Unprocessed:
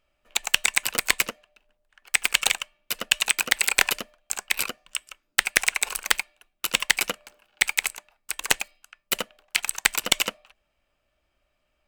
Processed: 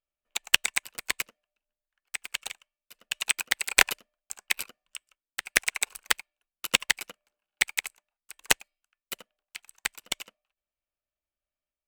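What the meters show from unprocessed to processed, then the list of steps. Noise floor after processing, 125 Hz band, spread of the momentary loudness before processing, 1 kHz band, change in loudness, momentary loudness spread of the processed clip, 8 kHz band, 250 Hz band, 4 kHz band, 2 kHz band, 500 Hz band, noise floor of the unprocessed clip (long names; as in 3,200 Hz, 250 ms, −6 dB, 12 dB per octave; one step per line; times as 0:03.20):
below −85 dBFS, −4.5 dB, 11 LU, −5.5 dB, −4.0 dB, 19 LU, −5.5 dB, −6.0 dB, −5.0 dB, −4.5 dB, −5.5 dB, −75 dBFS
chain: sample-and-hold tremolo, depth 55%
expander for the loud parts 2.5 to 1, over −34 dBFS
level +5.5 dB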